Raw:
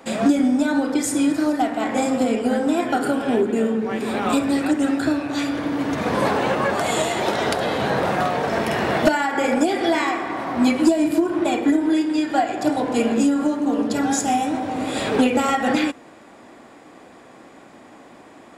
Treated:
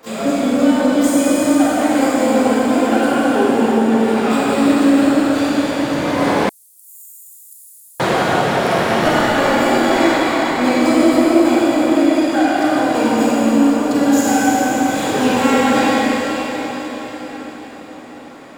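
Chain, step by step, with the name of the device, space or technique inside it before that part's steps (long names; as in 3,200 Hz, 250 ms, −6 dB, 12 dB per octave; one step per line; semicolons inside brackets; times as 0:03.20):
shimmer-style reverb (pitch-shifted copies added +12 semitones −9 dB; convolution reverb RT60 5.5 s, pre-delay 30 ms, DRR −7.5 dB)
0:06.49–0:08.00: inverse Chebyshev high-pass filter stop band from 2,100 Hz, stop band 80 dB
level −3 dB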